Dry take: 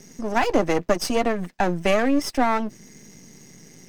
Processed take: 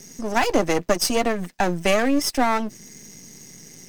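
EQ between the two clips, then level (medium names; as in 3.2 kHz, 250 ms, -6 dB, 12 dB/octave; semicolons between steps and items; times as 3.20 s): treble shelf 4 kHz +9 dB; 0.0 dB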